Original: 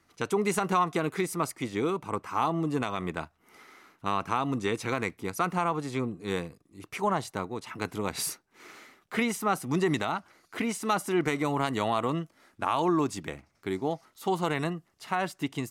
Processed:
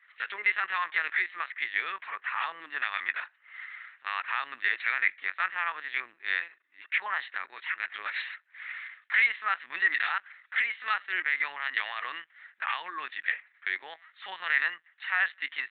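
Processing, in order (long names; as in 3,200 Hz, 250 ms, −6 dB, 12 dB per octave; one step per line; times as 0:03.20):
brickwall limiter −19 dBFS, peak gain reduction 5 dB
0:10.58–0:13.03: amplitude tremolo 3.3 Hz, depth 30%
linear-prediction vocoder at 8 kHz pitch kept
high-pass with resonance 1,800 Hz, resonance Q 6
level +3 dB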